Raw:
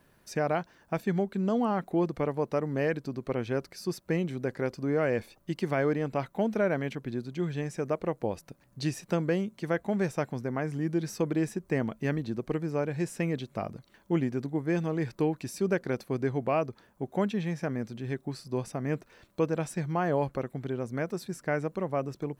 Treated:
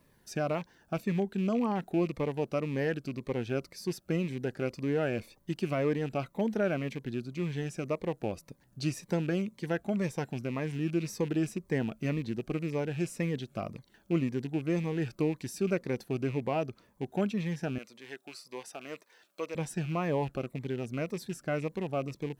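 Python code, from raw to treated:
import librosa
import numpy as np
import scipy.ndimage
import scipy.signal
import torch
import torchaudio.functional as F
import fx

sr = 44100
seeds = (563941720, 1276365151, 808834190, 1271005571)

y = fx.rattle_buzz(x, sr, strikes_db=-36.0, level_db=-34.0)
y = fx.bessel_highpass(y, sr, hz=710.0, order=2, at=(17.78, 19.55))
y = fx.notch_cascade(y, sr, direction='falling', hz=1.9)
y = y * 10.0 ** (-1.0 / 20.0)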